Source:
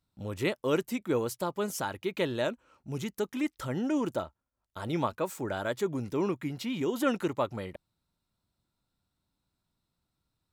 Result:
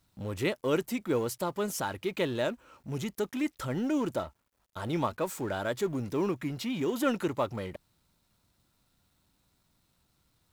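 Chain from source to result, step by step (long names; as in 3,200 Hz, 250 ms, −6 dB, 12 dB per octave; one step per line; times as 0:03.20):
mu-law and A-law mismatch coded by mu
level −1 dB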